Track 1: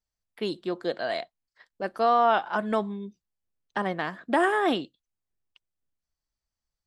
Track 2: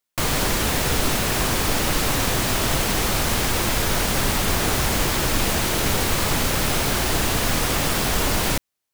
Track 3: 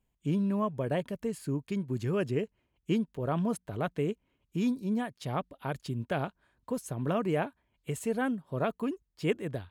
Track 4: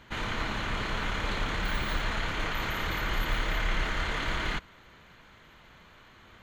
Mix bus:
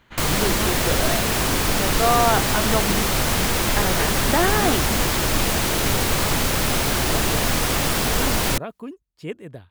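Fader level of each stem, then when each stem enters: +2.0, +0.5, -2.5, -4.0 dB; 0.00, 0.00, 0.00, 0.00 s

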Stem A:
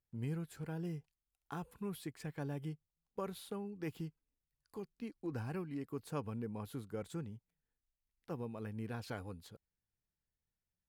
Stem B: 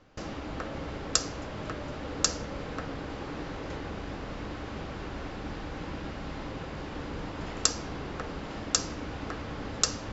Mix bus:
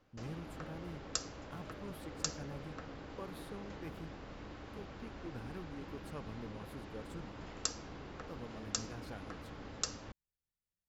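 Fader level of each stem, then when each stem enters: -6.0, -11.0 dB; 0.00, 0.00 s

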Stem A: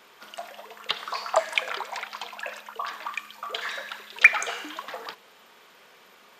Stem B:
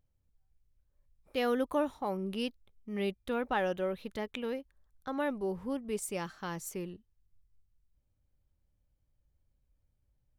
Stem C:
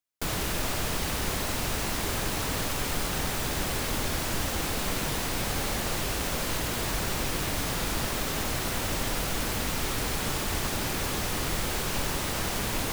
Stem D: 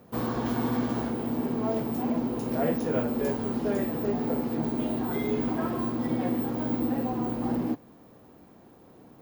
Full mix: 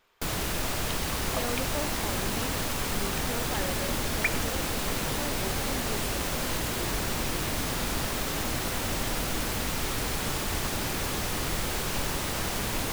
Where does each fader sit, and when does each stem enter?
-14.0, -5.5, -0.5, -15.5 dB; 0.00, 0.00, 0.00, 1.65 s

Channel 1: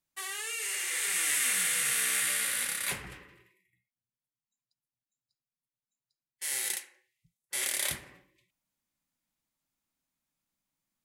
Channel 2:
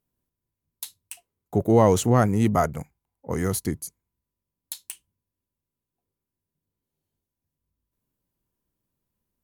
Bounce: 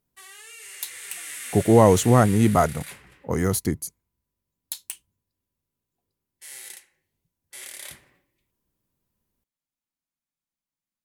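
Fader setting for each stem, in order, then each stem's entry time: -8.0, +2.5 dB; 0.00, 0.00 s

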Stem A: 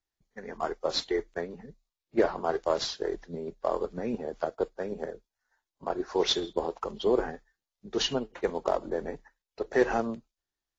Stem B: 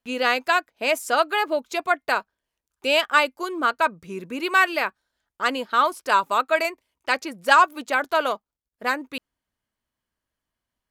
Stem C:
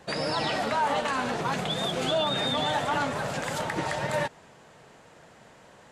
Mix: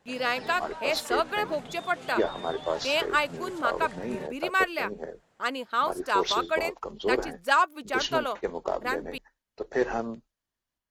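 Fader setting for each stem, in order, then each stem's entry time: -2.0, -6.5, -15.0 dB; 0.00, 0.00, 0.00 s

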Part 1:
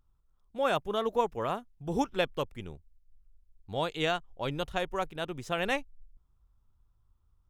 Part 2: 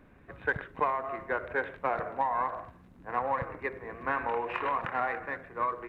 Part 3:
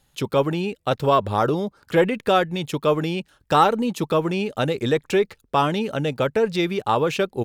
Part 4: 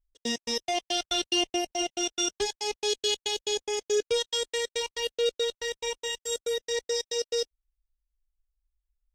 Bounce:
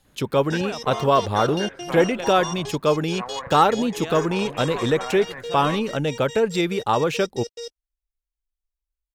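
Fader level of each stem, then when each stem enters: -5.0, -3.0, 0.0, -6.5 dB; 0.00, 0.05, 0.00, 0.25 s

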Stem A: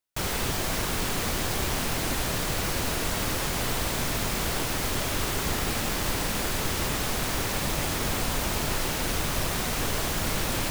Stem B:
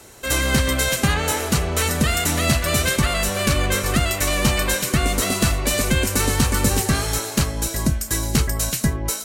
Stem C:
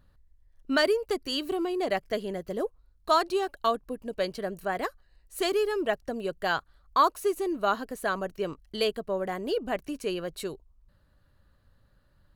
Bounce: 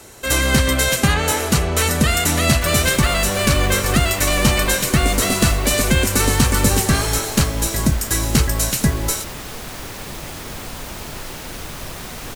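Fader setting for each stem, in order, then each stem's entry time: -3.5, +3.0, -18.0 dB; 2.45, 0.00, 0.00 s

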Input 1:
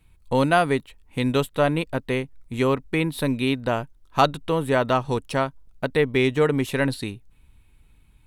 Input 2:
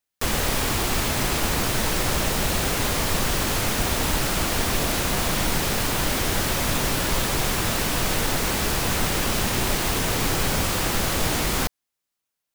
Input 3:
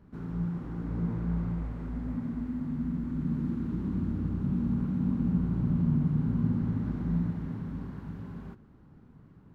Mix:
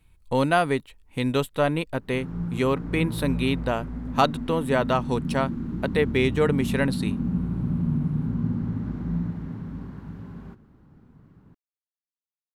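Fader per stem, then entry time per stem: -2.0 dB, off, +1.5 dB; 0.00 s, off, 2.00 s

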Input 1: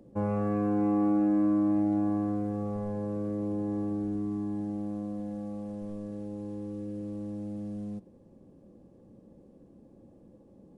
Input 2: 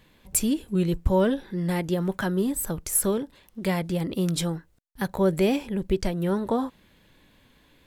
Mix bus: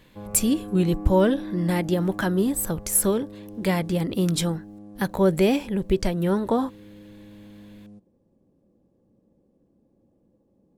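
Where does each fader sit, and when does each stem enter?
-9.0, +2.5 dB; 0.00, 0.00 s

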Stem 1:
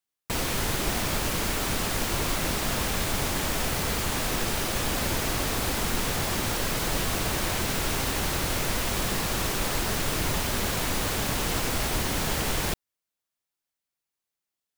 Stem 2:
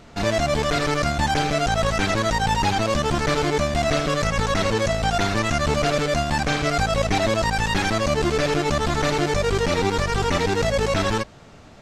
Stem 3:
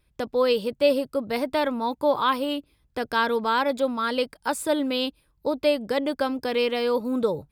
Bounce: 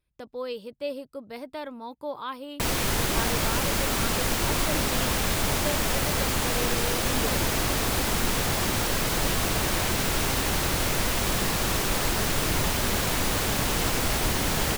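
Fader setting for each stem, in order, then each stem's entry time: +2.0 dB, off, -12.0 dB; 2.30 s, off, 0.00 s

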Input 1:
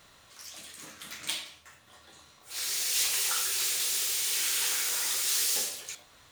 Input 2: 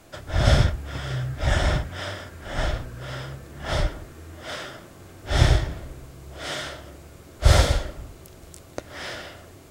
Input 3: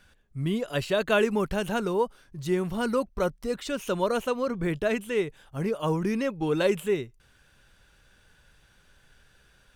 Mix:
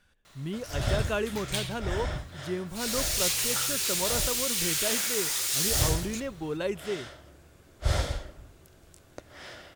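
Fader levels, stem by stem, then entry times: +0.5, -10.5, -7.0 dB; 0.25, 0.40, 0.00 s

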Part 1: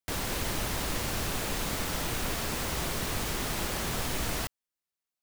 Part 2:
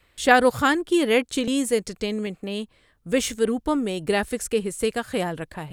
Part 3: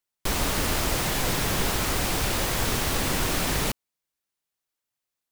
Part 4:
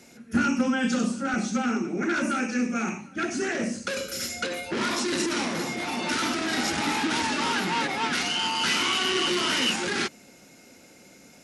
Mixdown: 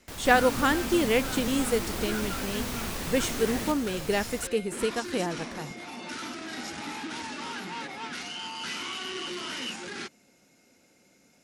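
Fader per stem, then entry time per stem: -8.0, -4.5, -10.0, -10.5 dB; 0.00, 0.00, 0.00, 0.00 s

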